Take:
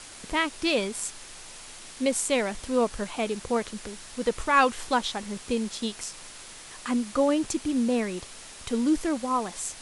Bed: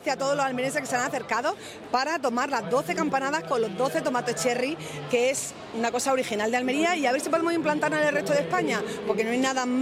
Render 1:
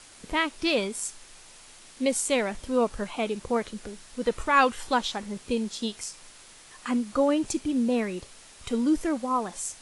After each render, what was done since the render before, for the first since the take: noise print and reduce 6 dB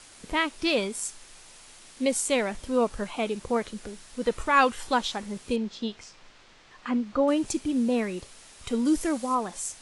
5.56–7.28 s: distance through air 160 m; 8.85–9.35 s: treble shelf 4.7 kHz +9 dB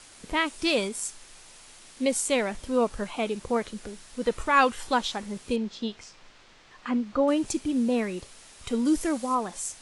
0.46–0.89 s: peaking EQ 8.5 kHz +7 dB 0.89 oct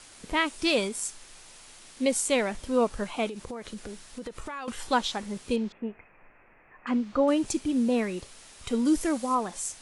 3.28–4.68 s: compression 16:1, threshold -33 dBFS; 5.72–6.87 s: rippled Chebyshev low-pass 2.6 kHz, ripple 3 dB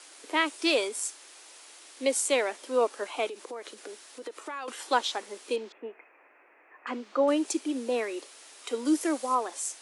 steep high-pass 290 Hz 48 dB/octave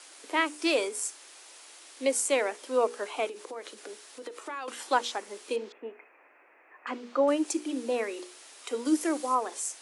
hum notches 60/120/180/240/300/360/420/480 Hz; dynamic bell 3.7 kHz, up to -5 dB, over -45 dBFS, Q 2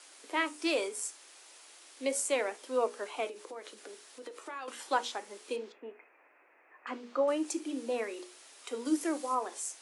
flange 0.35 Hz, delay 7 ms, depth 5.9 ms, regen -74%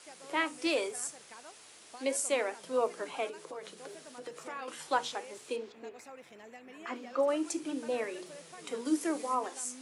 add bed -26 dB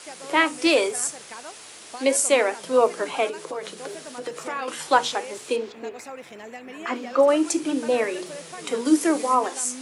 trim +11.5 dB

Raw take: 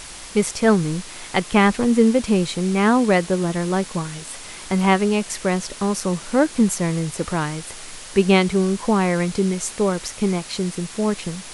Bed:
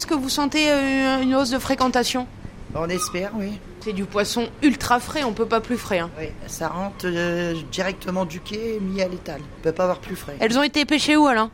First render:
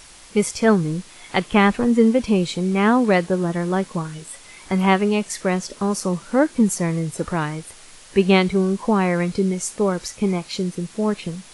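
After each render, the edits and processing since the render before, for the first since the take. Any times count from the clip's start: noise print and reduce 8 dB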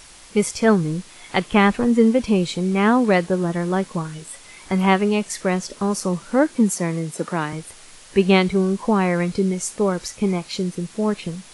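6.56–7.53 s: high-pass 160 Hz 24 dB/octave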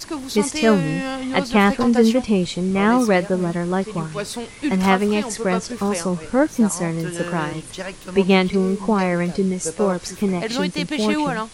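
add bed -6.5 dB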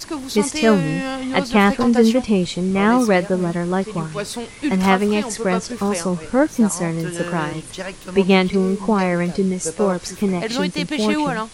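trim +1 dB

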